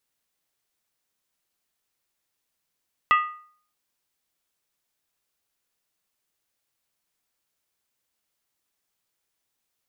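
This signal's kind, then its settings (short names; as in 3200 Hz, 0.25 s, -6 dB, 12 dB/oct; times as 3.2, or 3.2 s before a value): skin hit, lowest mode 1230 Hz, decay 0.52 s, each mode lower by 6 dB, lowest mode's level -13 dB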